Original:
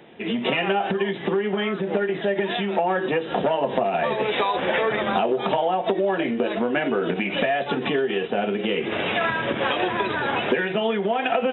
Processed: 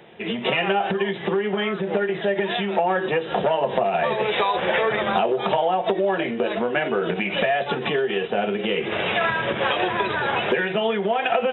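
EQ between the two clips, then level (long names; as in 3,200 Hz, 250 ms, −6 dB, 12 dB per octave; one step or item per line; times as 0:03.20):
parametric band 270 Hz −12 dB 0.33 octaves
+1.5 dB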